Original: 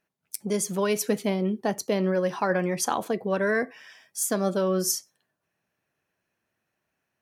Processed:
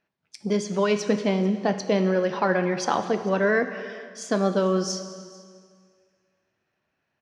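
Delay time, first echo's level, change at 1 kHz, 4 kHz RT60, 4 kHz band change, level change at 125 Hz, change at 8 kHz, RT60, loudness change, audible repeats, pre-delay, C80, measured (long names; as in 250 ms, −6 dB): 446 ms, −23.0 dB, +3.0 dB, 1.8 s, +1.5 dB, +2.5 dB, −7.0 dB, 1.9 s, +2.5 dB, 1, 4 ms, 11.0 dB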